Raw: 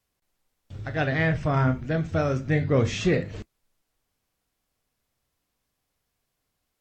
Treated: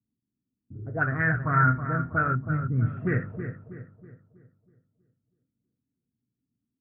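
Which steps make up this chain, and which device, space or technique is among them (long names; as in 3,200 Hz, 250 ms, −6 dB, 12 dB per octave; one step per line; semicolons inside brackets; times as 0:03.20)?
0:02.35–0:02.97: Chebyshev band-stop filter 230–3,800 Hz, order 2
envelope filter bass rig (envelope-controlled low-pass 260–1,600 Hz up, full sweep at −20 dBFS; loudspeaker in its box 77–2,200 Hz, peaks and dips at 120 Hz +10 dB, 210 Hz +5 dB, 560 Hz −8 dB, 810 Hz −6 dB, 1,400 Hz +8 dB)
feedback echo with a low-pass in the loop 322 ms, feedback 44%, low-pass 1,900 Hz, level −9 dB
level −6.5 dB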